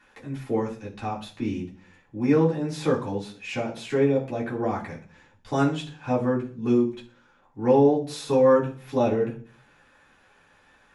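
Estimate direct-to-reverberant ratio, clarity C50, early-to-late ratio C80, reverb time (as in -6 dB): -5.0 dB, 11.0 dB, 15.5 dB, 0.40 s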